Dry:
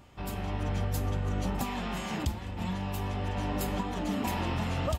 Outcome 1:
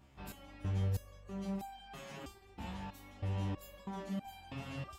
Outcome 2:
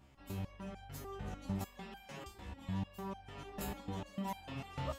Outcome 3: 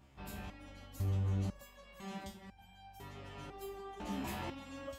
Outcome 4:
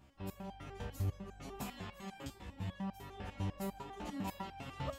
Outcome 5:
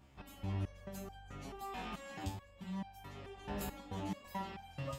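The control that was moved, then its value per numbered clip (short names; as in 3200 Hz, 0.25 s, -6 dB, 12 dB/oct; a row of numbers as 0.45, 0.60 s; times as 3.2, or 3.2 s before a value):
stepped resonator, rate: 3.1, 6.7, 2, 10, 4.6 Hz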